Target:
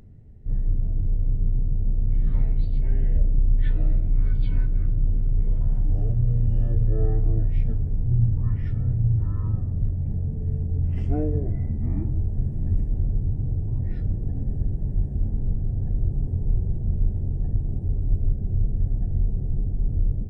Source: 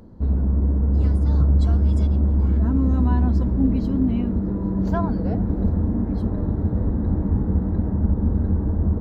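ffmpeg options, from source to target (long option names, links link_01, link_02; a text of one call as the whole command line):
ffmpeg -i in.wav -af "bandreject=frequency=115.9:width_type=h:width=4,bandreject=frequency=231.8:width_type=h:width=4,bandreject=frequency=347.7:width_type=h:width=4,bandreject=frequency=463.6:width_type=h:width=4,bandreject=frequency=579.5:width_type=h:width=4,bandreject=frequency=695.4:width_type=h:width=4,bandreject=frequency=811.3:width_type=h:width=4,bandreject=frequency=927.2:width_type=h:width=4,bandreject=frequency=1043.1:width_type=h:width=4,bandreject=frequency=1159:width_type=h:width=4,bandreject=frequency=1274.9:width_type=h:width=4,bandreject=frequency=1390.8:width_type=h:width=4,bandreject=frequency=1506.7:width_type=h:width=4,bandreject=frequency=1622.6:width_type=h:width=4,bandreject=frequency=1738.5:width_type=h:width=4,bandreject=frequency=1854.4:width_type=h:width=4,bandreject=frequency=1970.3:width_type=h:width=4,bandreject=frequency=2086.2:width_type=h:width=4,bandreject=frequency=2202.1:width_type=h:width=4,bandreject=frequency=2318:width_type=h:width=4,bandreject=frequency=2433.9:width_type=h:width=4,bandreject=frequency=2549.8:width_type=h:width=4,bandreject=frequency=2665.7:width_type=h:width=4,bandreject=frequency=2781.6:width_type=h:width=4,bandreject=frequency=2897.5:width_type=h:width=4,bandreject=frequency=3013.4:width_type=h:width=4,bandreject=frequency=3129.3:width_type=h:width=4,bandreject=frequency=3245.2:width_type=h:width=4,bandreject=frequency=3361.1:width_type=h:width=4,bandreject=frequency=3477:width_type=h:width=4,asetrate=19580,aresample=44100,volume=-1.5dB" out.wav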